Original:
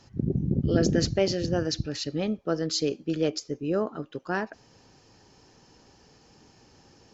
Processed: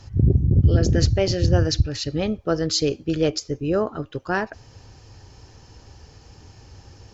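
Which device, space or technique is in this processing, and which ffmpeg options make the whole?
car stereo with a boomy subwoofer: -af "lowshelf=f=130:t=q:w=1.5:g=11.5,alimiter=limit=0.224:level=0:latency=1:release=453,volume=2"

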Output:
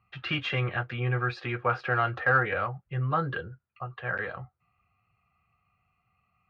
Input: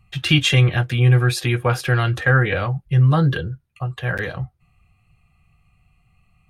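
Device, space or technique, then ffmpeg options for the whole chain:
overdrive pedal into a guitar cabinet: -filter_complex "[0:a]asettb=1/sr,asplit=3[s0][s1][s2];[s0]atrim=end=1.844[s3];[s1]atrim=start=1.84:end=2.45,asetpts=PTS-STARTPTS,afade=t=in:d=0.004:c=qsin,afade=t=out:st=0.606:d=0.004:c=qsin,equalizer=f=720:w=1.5:g=6[s4];[s2]atrim=start=2.446[s5];[s3][s4]acrossfade=d=0.004:c1=hsin:c2=qsin[s6];[s6][s5]acrossfade=d=0.004:c1=qsin:c2=hsin,asplit=2[s7][s8];[s8]highpass=f=720:p=1,volume=2.51,asoftclip=type=tanh:threshold=0.631[s9];[s7][s9]amix=inputs=2:normalize=0,lowpass=f=1400:p=1,volume=0.501,highpass=85,equalizer=f=150:t=q:w=4:g=-6,equalizer=f=310:t=q:w=4:g=-4,equalizer=f=1300:t=q:w=4:g=7,equalizer=f=3500:t=q:w=4:g=-6,lowpass=f=4500:w=0.5412,lowpass=f=4500:w=1.3066,volume=0.422"

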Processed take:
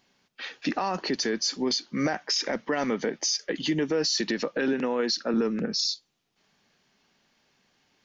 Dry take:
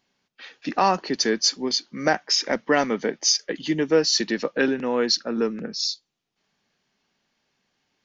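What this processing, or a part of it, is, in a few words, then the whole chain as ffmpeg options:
stacked limiters: -filter_complex "[0:a]alimiter=limit=0.211:level=0:latency=1:release=22,alimiter=limit=0.141:level=0:latency=1:release=245,alimiter=limit=0.075:level=0:latency=1:release=66,asettb=1/sr,asplit=3[s0][s1][s2];[s0]atrim=end=4.734[s3];[s1]atrim=start=4.73:end=5.34,asetpts=PTS-STARTPTS,afade=t=in:d=0.004:c=qsin,afade=t=out:st=0.606:d=0.004:c=qsin,highpass=170[s4];[s2]atrim=start=5.336[s5];[s3][s4]acrossfade=d=0.004:c1=hsin:c2=qsin[s6];[s6][s5]acrossfade=d=0.004:c1=qsin:c2=hsin,volume=1.78"

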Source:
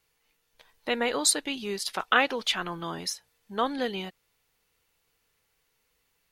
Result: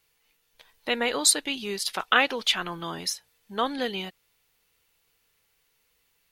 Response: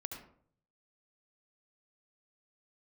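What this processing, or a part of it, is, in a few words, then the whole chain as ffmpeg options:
presence and air boost: -af "equalizer=f=3100:t=o:w=1.5:g=3.5,highshelf=f=9900:g=6.5"

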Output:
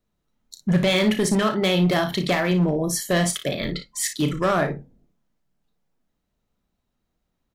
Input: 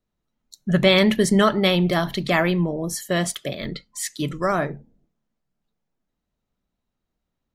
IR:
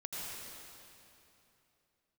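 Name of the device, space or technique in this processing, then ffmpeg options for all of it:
limiter into clipper: -filter_complex "[0:a]asettb=1/sr,asplit=3[s0][s1][s2];[s0]atrim=end=0.934[s3];[s1]atrim=start=0.93:end=2.51,asetpts=PTS-STARTPTS,afade=t=in:d=0.004:c=qsin,afade=t=out:st=1.576:d=0.004:c=qsin,highpass=f=92:p=1[s4];[s2]atrim=start=2.506[s5];[s3][s4]acrossfade=d=0.004:c1=hsin:c2=qsin[s6];[s6][s5]acrossfade=d=0.004:c1=qsin:c2=hsin,alimiter=limit=0.224:level=0:latency=1:release=352,asoftclip=type=hard:threshold=0.119,aecho=1:1:33|57:0.335|0.282,volume=1.41"

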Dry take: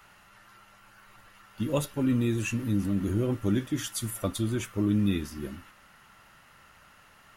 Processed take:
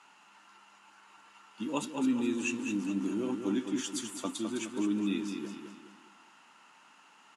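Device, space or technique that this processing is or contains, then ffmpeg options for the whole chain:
television speaker: -af "highpass=f=210:w=0.5412,highpass=f=210:w=1.3066,equalizer=f=280:t=q:w=4:g=5,equalizer=f=560:t=q:w=4:g=-7,equalizer=f=910:t=q:w=4:g=9,equalizer=f=1900:t=q:w=4:g=-4,equalizer=f=2700:t=q:w=4:g=5,equalizer=f=7300:t=q:w=4:g=4,lowpass=f=8500:w=0.5412,lowpass=f=8500:w=1.3066,highshelf=f=7100:g=4.5,aecho=1:1:209|418|627|836|1045:0.447|0.174|0.0679|0.0265|0.0103,volume=0.562"

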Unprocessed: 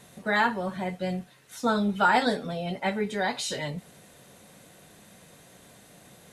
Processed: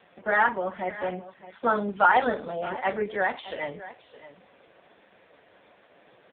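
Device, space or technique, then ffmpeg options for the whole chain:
satellite phone: -af "highpass=360,lowpass=3000,aecho=1:1:613:0.168,volume=1.68" -ar 8000 -c:a libopencore_amrnb -b:a 5150

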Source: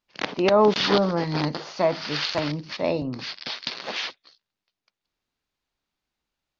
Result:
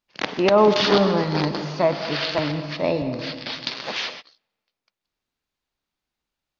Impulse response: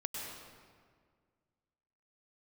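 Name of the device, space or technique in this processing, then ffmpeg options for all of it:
keyed gated reverb: -filter_complex "[0:a]asettb=1/sr,asplit=3[s0][s1][s2];[s0]atrim=end=1.654[s3];[s1]atrim=start=1.65:end=3.53,asetpts=PTS-STARTPTS,afade=t=in:d=0.004:c=qsin,afade=t=out:st=1.876:d=0.004:c=qsin,acrossover=split=5200[s4][s5];[s5]acompressor=threshold=0.00224:ratio=4:attack=1:release=60[s6];[s4][s6]amix=inputs=2:normalize=0[s7];[s2]atrim=start=3.526[s8];[s3][s7]acrossfade=d=0.004:c1=hsin:c2=qsin[s9];[s9][s8]acrossfade=d=0.004:c1=qsin:c2=hsin,asplit=3[s10][s11][s12];[1:a]atrim=start_sample=2205[s13];[s11][s13]afir=irnorm=-1:irlink=0[s14];[s12]apad=whole_len=290723[s15];[s14][s15]sidechaingate=range=0.0282:threshold=0.00562:ratio=16:detection=peak,volume=0.562[s16];[s10][s16]amix=inputs=2:normalize=0,volume=0.891"

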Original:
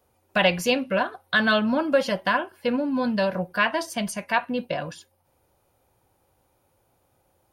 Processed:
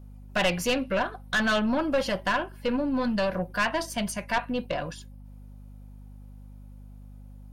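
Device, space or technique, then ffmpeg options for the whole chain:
valve amplifier with mains hum: -af "aeval=exprs='(tanh(8.91*val(0)+0.3)-tanh(0.3))/8.91':c=same,aeval=exprs='val(0)+0.00631*(sin(2*PI*50*n/s)+sin(2*PI*2*50*n/s)/2+sin(2*PI*3*50*n/s)/3+sin(2*PI*4*50*n/s)/4+sin(2*PI*5*50*n/s)/5)':c=same"

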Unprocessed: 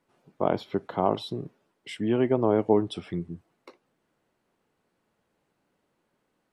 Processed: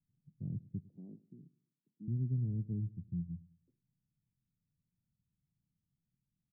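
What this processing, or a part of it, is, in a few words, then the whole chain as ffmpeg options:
the neighbour's flat through the wall: -filter_complex "[0:a]asettb=1/sr,asplit=3[s0][s1][s2];[s0]atrim=end=0.884[s3];[s1]atrim=start=0.88:end=2.08,asetpts=PTS-STARTPTS,afade=t=in:d=0.004:c=qsin,afade=t=out:st=1.196:d=0.004:c=qsin,highpass=f=240:w=0.5412,highpass=f=240:w=1.3066[s4];[s2]atrim=start=2.076[s5];[s3][s4]acrossfade=d=0.004:c1=hsin:c2=qsin[s6];[s6][s5]acrossfade=d=0.004:c1=qsin:c2=hsin,lowpass=f=160:w=0.5412,lowpass=f=160:w=1.3066,equalizer=f=130:t=o:w=0.77:g=3.5,asplit=2[s7][s8];[s8]adelay=104,lowpass=f=2000:p=1,volume=0.1,asplit=2[s9][s10];[s10]adelay=104,lowpass=f=2000:p=1,volume=0.39,asplit=2[s11][s12];[s12]adelay=104,lowpass=f=2000:p=1,volume=0.39[s13];[s7][s9][s11][s13]amix=inputs=4:normalize=0,volume=0.794"

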